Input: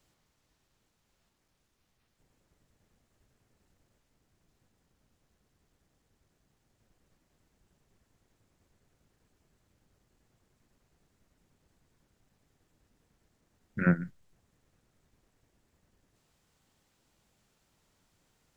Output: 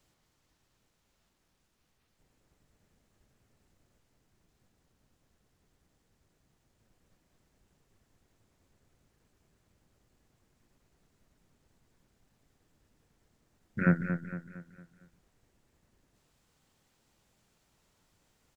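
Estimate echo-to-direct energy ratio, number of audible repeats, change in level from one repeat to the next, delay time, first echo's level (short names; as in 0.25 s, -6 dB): -7.5 dB, 4, -7.0 dB, 0.229 s, -8.5 dB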